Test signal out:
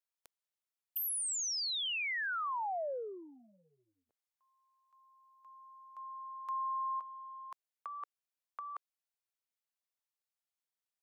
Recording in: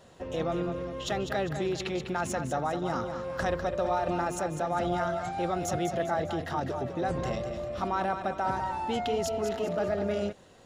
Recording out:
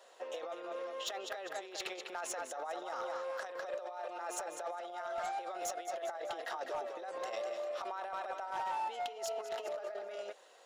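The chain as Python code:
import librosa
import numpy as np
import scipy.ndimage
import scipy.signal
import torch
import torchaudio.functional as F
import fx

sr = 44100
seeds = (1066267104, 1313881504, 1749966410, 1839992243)

y = fx.over_compress(x, sr, threshold_db=-32.0, ratio=-0.5)
y = scipy.signal.sosfilt(scipy.signal.butter(4, 490.0, 'highpass', fs=sr, output='sos'), y)
y = np.clip(10.0 ** (27.5 / 20.0) * y, -1.0, 1.0) / 10.0 ** (27.5 / 20.0)
y = F.gain(torch.from_numpy(y), -4.5).numpy()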